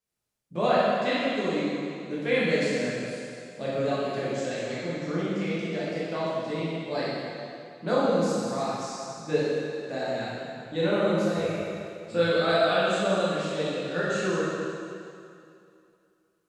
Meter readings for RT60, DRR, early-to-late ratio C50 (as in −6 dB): 2.5 s, −9.0 dB, −4.0 dB